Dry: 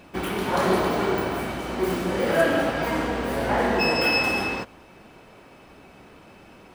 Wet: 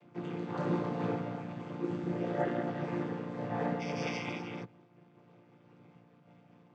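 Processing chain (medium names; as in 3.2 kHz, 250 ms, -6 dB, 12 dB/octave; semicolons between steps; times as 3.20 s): vocoder on a held chord major triad, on A#2; random flutter of the level, depth 55%; trim -7.5 dB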